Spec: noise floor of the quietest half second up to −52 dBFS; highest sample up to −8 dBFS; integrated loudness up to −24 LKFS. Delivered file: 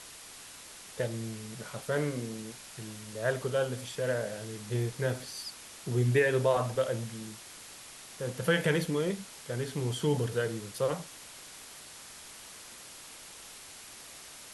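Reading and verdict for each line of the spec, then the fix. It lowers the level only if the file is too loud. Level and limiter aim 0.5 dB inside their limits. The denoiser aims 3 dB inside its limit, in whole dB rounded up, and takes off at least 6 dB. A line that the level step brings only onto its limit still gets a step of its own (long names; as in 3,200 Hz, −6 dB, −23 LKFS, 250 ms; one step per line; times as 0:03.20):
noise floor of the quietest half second −49 dBFS: out of spec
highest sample −14.0 dBFS: in spec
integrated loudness −32.5 LKFS: in spec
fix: broadband denoise 6 dB, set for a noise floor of −49 dBFS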